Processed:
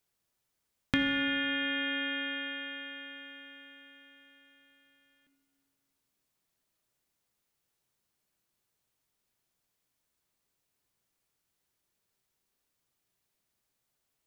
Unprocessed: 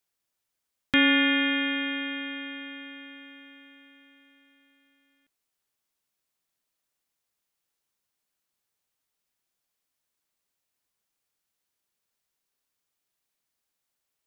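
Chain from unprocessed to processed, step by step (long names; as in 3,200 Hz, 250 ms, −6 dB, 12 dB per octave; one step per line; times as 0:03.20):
low-shelf EQ 440 Hz +7 dB
downward compressor, threshold −26 dBFS, peak gain reduction 11.5 dB
on a send: convolution reverb RT60 2.2 s, pre-delay 4 ms, DRR 7.5 dB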